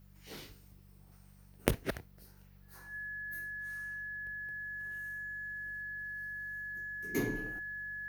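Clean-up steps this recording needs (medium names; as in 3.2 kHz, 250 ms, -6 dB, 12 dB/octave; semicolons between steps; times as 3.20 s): de-hum 48.2 Hz, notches 4; band-stop 1.7 kHz, Q 30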